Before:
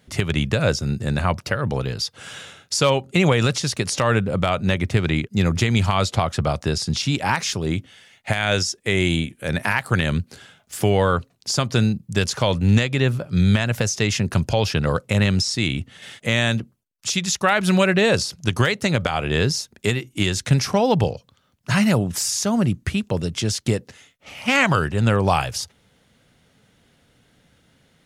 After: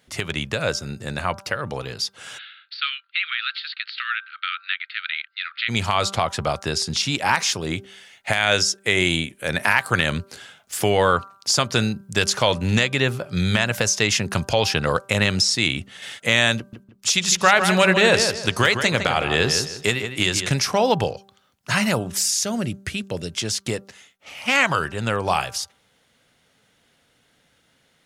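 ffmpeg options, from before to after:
-filter_complex "[0:a]asplit=3[a][b][c];[a]afade=t=out:st=2.37:d=0.02[d];[b]asuperpass=centerf=2400:order=20:qfactor=0.76,afade=t=in:st=2.37:d=0.02,afade=t=out:st=5.68:d=0.02[e];[c]afade=t=in:st=5.68:d=0.02[f];[d][e][f]amix=inputs=3:normalize=0,asettb=1/sr,asplit=3[g][h][i];[g]atrim=end=16.574[j];[h]atrim=start=16.57:end=20.52,asetpts=PTS-STARTPTS,afade=t=in:d=0.004:c=qsin,afade=t=out:st=3.946:d=0.004:c=qsin,asplit=2[k][l];[l]adelay=158,lowpass=f=3.3k:p=1,volume=-7dB,asplit=2[m][n];[n]adelay=158,lowpass=f=3.3k:p=1,volume=0.31,asplit=2[o][p];[p]adelay=158,lowpass=f=3.3k:p=1,volume=0.31,asplit=2[q][r];[r]adelay=158,lowpass=f=3.3k:p=1,volume=0.31[s];[k][m][o][q][s]amix=inputs=5:normalize=0,atrim=end_sample=174195[t];[i]atrim=start=20.516[u];[j][t]acrossfade=d=0.004:c1=hsin:c2=qsin[v];[v][u]acrossfade=d=0.004:c1=qsin:c2=hsin,asettb=1/sr,asplit=3[w][x][y];[w]atrim=end=22.154[z];[x]atrim=start=22.15:end=23.37,asetpts=PTS-STARTPTS,afade=t=in:d=0.004:c=qsin,afade=t=out:st=1.216:d=0.004:c=qsin,equalizer=f=1k:w=1.5:g=-8[aa];[y]atrim=start=23.366[ab];[z][aa]acrossfade=d=0.004:c1=hsin:c2=qsin[ac];[ac][ab]acrossfade=d=0.004:c1=qsin:c2=hsin,lowshelf=f=330:g=-11,bandreject=f=195.8:t=h:w=4,bandreject=f=391.6:t=h:w=4,bandreject=f=587.4:t=h:w=4,bandreject=f=783.2:t=h:w=4,bandreject=f=979:t=h:w=4,bandreject=f=1.1748k:t=h:w=4,bandreject=f=1.3706k:t=h:w=4,bandreject=f=1.5664k:t=h:w=4,dynaudnorm=f=600:g=21:m=11.5dB"

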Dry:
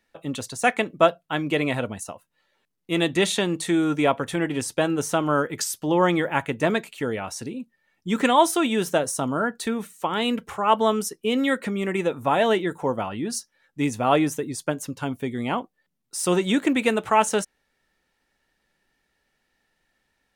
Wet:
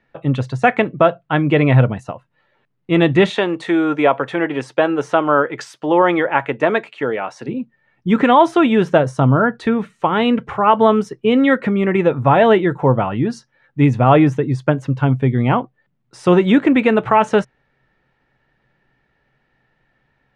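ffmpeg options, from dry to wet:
-filter_complex "[0:a]asplit=3[a][b][c];[a]afade=t=out:st=3.29:d=0.02[d];[b]highpass=360,afade=t=in:st=3.29:d=0.02,afade=t=out:st=7.47:d=0.02[e];[c]afade=t=in:st=7.47:d=0.02[f];[d][e][f]amix=inputs=3:normalize=0,lowpass=2.2k,equalizer=f=130:t=o:w=0.31:g=14,alimiter=level_in=10dB:limit=-1dB:release=50:level=0:latency=1,volume=-1dB"

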